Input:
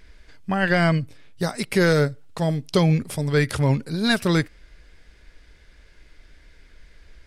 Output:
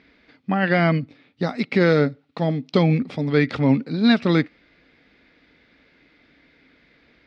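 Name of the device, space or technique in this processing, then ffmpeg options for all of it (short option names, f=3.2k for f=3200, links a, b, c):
kitchen radio: -af "highpass=200,equalizer=f=260:t=q:w=4:g=8,equalizer=f=390:t=q:w=4:g=-5,equalizer=f=600:t=q:w=4:g=-4,equalizer=f=990:t=q:w=4:g=-6,equalizer=f=1.6k:t=q:w=4:g=-7,equalizer=f=3k:t=q:w=4:g=-6,lowpass=f=3.7k:w=0.5412,lowpass=f=3.7k:w=1.3066,volume=4.5dB"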